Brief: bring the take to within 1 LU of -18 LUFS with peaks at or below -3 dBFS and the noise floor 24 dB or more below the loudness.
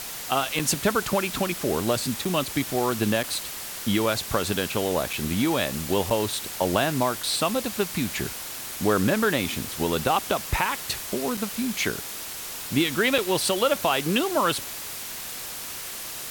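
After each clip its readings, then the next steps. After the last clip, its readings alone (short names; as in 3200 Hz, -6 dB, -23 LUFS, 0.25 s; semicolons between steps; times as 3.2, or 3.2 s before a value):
dropouts 8; longest dropout 4.4 ms; noise floor -36 dBFS; noise floor target -50 dBFS; loudness -25.5 LUFS; peak -9.0 dBFS; loudness target -18.0 LUFS
-> interpolate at 0.59/2.25/3.23/5.13/6.1/7.23/11.37/13.18, 4.4 ms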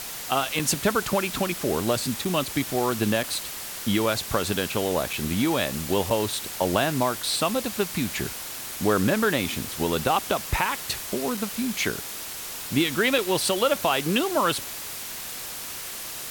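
dropouts 0; noise floor -36 dBFS; noise floor target -50 dBFS
-> denoiser 14 dB, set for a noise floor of -36 dBFS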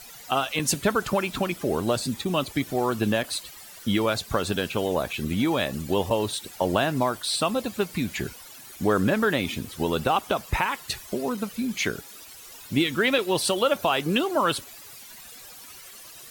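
noise floor -45 dBFS; noise floor target -50 dBFS
-> denoiser 6 dB, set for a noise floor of -45 dBFS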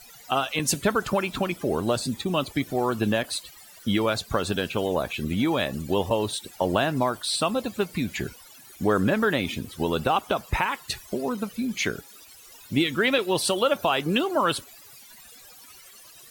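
noise floor -49 dBFS; noise floor target -50 dBFS
-> denoiser 6 dB, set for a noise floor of -49 dBFS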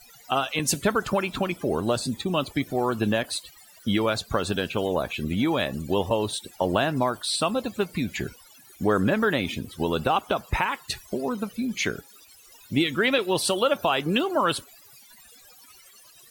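noise floor -52 dBFS; loudness -26.0 LUFS; peak -9.5 dBFS; loudness target -18.0 LUFS
-> gain +8 dB; limiter -3 dBFS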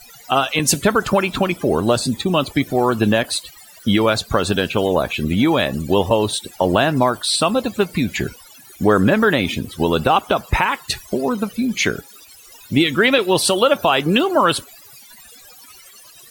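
loudness -18.0 LUFS; peak -3.0 dBFS; noise floor -44 dBFS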